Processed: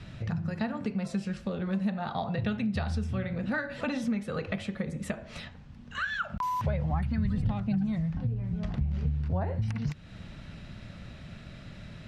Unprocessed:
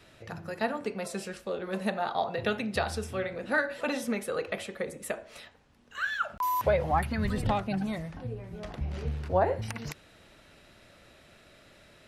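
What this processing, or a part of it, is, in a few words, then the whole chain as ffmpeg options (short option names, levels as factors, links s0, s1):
jukebox: -af "lowpass=5900,lowshelf=f=260:t=q:w=1.5:g=12,acompressor=threshold=0.0158:ratio=3,volume=1.78"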